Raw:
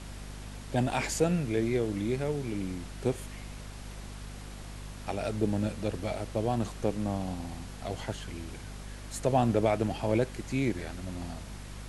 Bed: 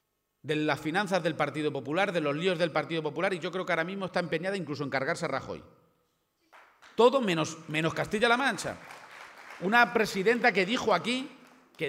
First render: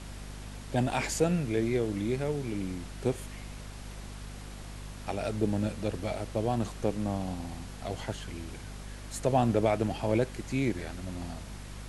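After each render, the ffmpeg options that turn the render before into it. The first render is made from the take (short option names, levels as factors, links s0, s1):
-af anull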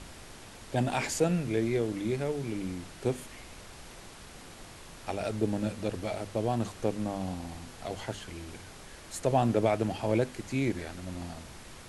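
-af "bandreject=f=50:t=h:w=6,bandreject=f=100:t=h:w=6,bandreject=f=150:t=h:w=6,bandreject=f=200:t=h:w=6,bandreject=f=250:t=h:w=6"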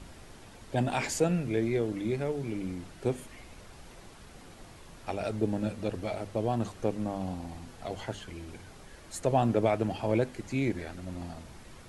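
-af "afftdn=nr=6:nf=-49"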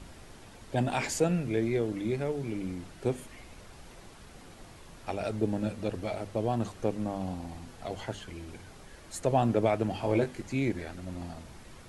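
-filter_complex "[0:a]asettb=1/sr,asplit=3[s0][s1][s2];[s0]atrim=end=9.914[s3];[s1]atrim=start=9.91:end=10.42,asetpts=PTS-STARTPTS,afade=t=in:d=0.004:c=qsin,afade=t=out:st=0.506:d=0.004:c=qsin,asplit=2[s4][s5];[s5]adelay=21,volume=0.501[s6];[s4][s6]amix=inputs=2:normalize=0,atrim=end_sample=22491[s7];[s2]atrim=start=10.416[s8];[s3][s7]acrossfade=d=0.004:c1=hsin:c2=qsin[s9];[s9][s8]acrossfade=d=0.004:c1=qsin:c2=hsin"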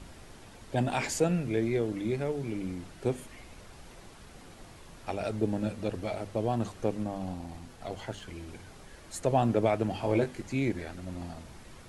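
-filter_complex "[0:a]asettb=1/sr,asplit=3[s0][s1][s2];[s0]atrim=end=7.034[s3];[s1]atrim=start=7.03:end=8.24,asetpts=PTS-STARTPTS,afade=t=in:d=0.004:c=qsin,afade=t=out:st=1.206:d=0.004:c=qsin,aeval=exprs='if(lt(val(0),0),0.708*val(0),val(0))':c=same[s4];[s2]atrim=start=8.236[s5];[s3][s4]acrossfade=d=0.004:c1=hsin:c2=qsin[s6];[s6][s5]acrossfade=d=0.004:c1=qsin:c2=hsin"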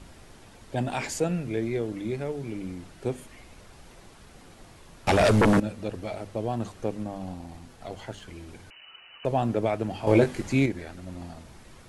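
-filter_complex "[0:a]asettb=1/sr,asplit=3[s0][s1][s2];[s0]atrim=end=5.074[s3];[s1]atrim=start=5.07:end=5.6,asetpts=PTS-STARTPTS,afade=t=in:d=0.004:c=qsin,afade=t=out:st=0.526:d=0.004:c=qsin,aeval=exprs='0.178*sin(PI/2*5.01*val(0)/0.178)':c=same[s4];[s2]atrim=start=5.596[s5];[s3][s4]acrossfade=d=0.004:c1=hsin:c2=qsin[s6];[s6][s5]acrossfade=d=0.004:c1=qsin:c2=hsin,asettb=1/sr,asplit=3[s7][s8][s9];[s7]atrim=end=8.704[s10];[s8]atrim=start=8.7:end=9.25,asetpts=PTS-STARTPTS,afade=t=in:d=0.004:c=qsin,afade=t=out:st=0.546:d=0.004:c=qsin,lowpass=f=2600:t=q:w=0.5098,lowpass=f=2600:t=q:w=0.6013,lowpass=f=2600:t=q:w=0.9,lowpass=f=2600:t=q:w=2.563,afreqshift=-3000[s11];[s9]atrim=start=9.246[s12];[s10][s11]acrossfade=d=0.004:c1=hsin:c2=qsin[s13];[s13][s12]acrossfade=d=0.004:c1=qsin:c2=hsin,asplit=3[s14][s15][s16];[s14]atrim=end=10.072[s17];[s15]atrim=start=10.068:end=10.662,asetpts=PTS-STARTPTS,volume=2.37[s18];[s16]atrim=start=10.658[s19];[s17][s18]acrossfade=d=0.004:c1=hsin:c2=hsin[s20];[s20][s19]acrossfade=d=0.004:c1=hsin:c2=hsin"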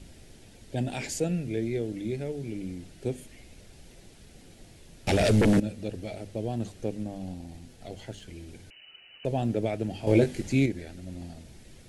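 -af "equalizer=f=1100:w=1.4:g=-15"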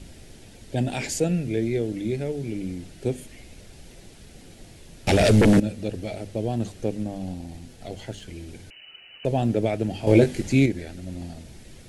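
-af "volume=1.78"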